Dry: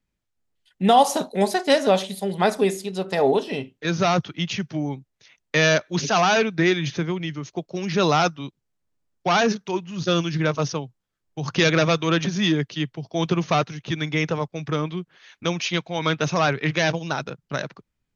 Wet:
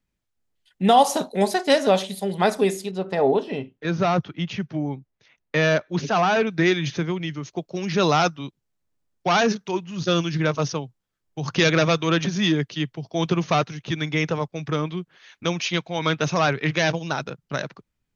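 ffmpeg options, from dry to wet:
-filter_complex "[0:a]asettb=1/sr,asplit=3[a][b][c];[a]atrim=end=2.914[d];[b]atrim=start=2.91:end=6.47,asetpts=PTS-STARTPTS,afade=t=in:d=0.004:c=qsin,afade=t=out:st=3.556:d=0.004:c=qsin,lowpass=f=1.9k:p=1[e];[c]atrim=start=6.466[f];[d][e]acrossfade=d=0.004:c1=hsin:c2=qsin[g];[g][f]acrossfade=d=0.004:c1=qsin:c2=hsin"

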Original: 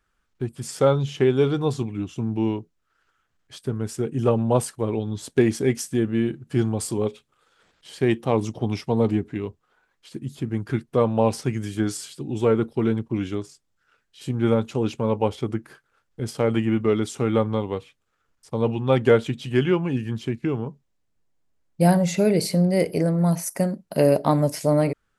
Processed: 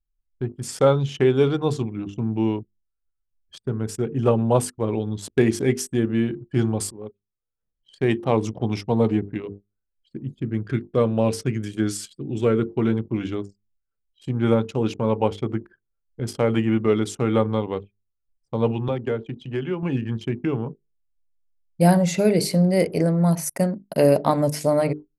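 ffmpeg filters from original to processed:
-filter_complex "[0:a]asettb=1/sr,asplit=3[a][b][c];[a]atrim=end=9.424[d];[b]atrim=start=9.42:end=12.7,asetpts=PTS-STARTPTS,afade=t=in:d=0.004:c=qsin,afade=t=out:st=3.276:d=0.004:c=qsin,equalizer=f=860:t=o:w=0.58:g=-9.5[e];[c]atrim=start=12.696[f];[d][e]acrossfade=d=0.004:c1=hsin:c2=qsin[g];[g][f]acrossfade=d=0.004:c1=qsin:c2=hsin,asettb=1/sr,asplit=3[h][i][j];[h]atrim=end=18.884[k];[i]atrim=start=18.88:end=19.83,asetpts=PTS-STARTPTS,afade=t=in:d=0.004:c=qsin,afade=t=out:st=0.946:d=0.004:c=qsin,acrossover=split=120|300|830[l][m][n][o];[l]acompressor=threshold=-42dB:ratio=3[p];[m]acompressor=threshold=-35dB:ratio=3[q];[n]acompressor=threshold=-30dB:ratio=3[r];[o]acompressor=threshold=-42dB:ratio=3[s];[p][q][r][s]amix=inputs=4:normalize=0[t];[j]atrim=start=19.826[u];[k][t]acrossfade=d=0.004:c1=hsin:c2=qsin[v];[v][u]acrossfade=d=0.004:c1=qsin:c2=hsin,asplit=2[w][x];[w]atrim=end=6.91,asetpts=PTS-STARTPTS,afade=t=out:st=6.906:d=0.004:c=hsin:silence=0.141254[y];[x]atrim=start=6.91,asetpts=PTS-STARTPTS,afade=t=in:d=1.29:silence=0.141254[z];[y][z]concat=n=2:v=0:a=1,bandreject=f=50:t=h:w=6,bandreject=f=100:t=h:w=6,bandreject=f=150:t=h:w=6,bandreject=f=200:t=h:w=6,bandreject=f=250:t=h:w=6,bandreject=f=300:t=h:w=6,bandreject=f=350:t=h:w=6,bandreject=f=400:t=h:w=6,bandreject=f=450:t=h:w=6,anlmdn=0.631,volume=1.5dB"

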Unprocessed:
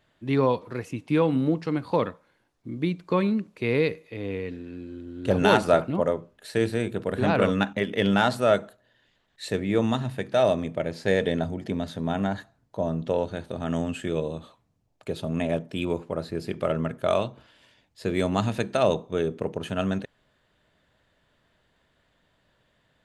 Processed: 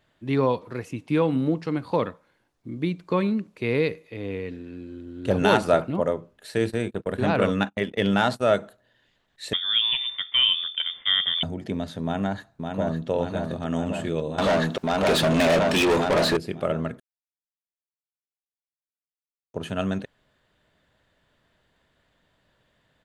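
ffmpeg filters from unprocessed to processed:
-filter_complex "[0:a]asplit=3[a][b][c];[a]afade=t=out:st=6.67:d=0.02[d];[b]agate=range=-28dB:threshold=-33dB:ratio=16:release=100:detection=peak,afade=t=in:st=6.67:d=0.02,afade=t=out:st=8.57:d=0.02[e];[c]afade=t=in:st=8.57:d=0.02[f];[d][e][f]amix=inputs=3:normalize=0,asettb=1/sr,asplit=3[g][h][i];[g]atrim=end=9.534[j];[h]atrim=start=9.53:end=11.43,asetpts=PTS-STARTPTS,afade=t=in:d=0.004:c=qsin,afade=t=out:st=1.896:d=0.004:c=qsin,lowpass=f=3.1k:t=q:w=0.5098,lowpass=f=3.1k:t=q:w=0.6013,lowpass=f=3.1k:t=q:w=0.9,lowpass=f=3.1k:t=q:w=2.563,afreqshift=-3700[k];[i]atrim=start=11.426[l];[j][k]acrossfade=d=0.004:c1=hsin:c2=qsin[m];[m][l]acrossfade=d=0.004:c1=qsin:c2=hsin,asplit=2[n][o];[o]afade=t=in:st=12.03:d=0.01,afade=t=out:st=13.09:d=0.01,aecho=0:1:560|1120|1680|2240|2800|3360|3920|4480|5040|5600|6160|6720:0.595662|0.47653|0.381224|0.304979|0.243983|0.195187|0.156149|0.124919|0.0999355|0.0799484|0.0639587|0.051167[p];[n][p]amix=inputs=2:normalize=0,asettb=1/sr,asplit=3[q][r][s];[q]atrim=end=14.384[t];[r]atrim=start=14.38:end=16.37,asetpts=PTS-STARTPTS,afade=t=in:d=0.004:c=qsin,afade=t=out:st=1.986:d=0.004:c=qsin,asplit=2[u][v];[v]highpass=f=720:p=1,volume=32dB,asoftclip=type=tanh:threshold=-12.5dB[w];[u][w]amix=inputs=2:normalize=0,lowpass=f=7k:p=1,volume=-6dB[x];[s]atrim=start=16.366[y];[t][x]acrossfade=d=0.004:c1=hsin:c2=qsin[z];[z][y]acrossfade=d=0.004:c1=qsin:c2=hsin,asplit=3[aa][ab][ac];[aa]atrim=end=17,asetpts=PTS-STARTPTS,afade=t=out:st=16.996:d=0.004:c=hsin[ad];[ab]atrim=start=17:end=19.54,asetpts=PTS-STARTPTS,volume=0[ae];[ac]atrim=start=19.54,asetpts=PTS-STARTPTS,afade=t=in:d=0.004:c=hsin[af];[ad][ae][af]concat=n=3:v=0:a=1"

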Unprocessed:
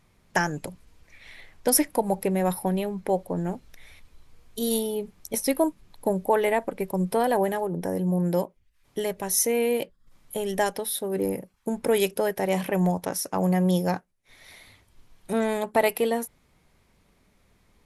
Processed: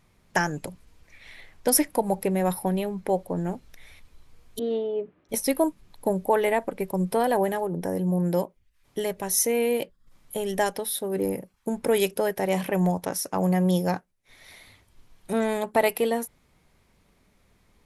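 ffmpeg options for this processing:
-filter_complex "[0:a]asettb=1/sr,asplit=3[a][b][c];[a]atrim=end=4.594[d];[b]atrim=start=4.59:end=5.29,asetpts=PTS-STARTPTS,afade=t=in:d=0.004:c=qsin,afade=t=out:st=0.696:d=0.004:c=qsin,highpass=140,equalizer=f=210:t=q:w=4:g=-9,equalizer=f=310:t=q:w=4:g=10,equalizer=f=590:t=q:w=4:g=6,equalizer=f=850:t=q:w=4:g=-6,equalizer=f=2.2k:t=q:w=4:g=-5,lowpass=f=2.5k:w=0.5412,lowpass=f=2.5k:w=1.3066[e];[c]atrim=start=5.286[f];[d][e]acrossfade=d=0.004:c1=hsin:c2=qsin[g];[g][f]acrossfade=d=0.004:c1=qsin:c2=hsin"

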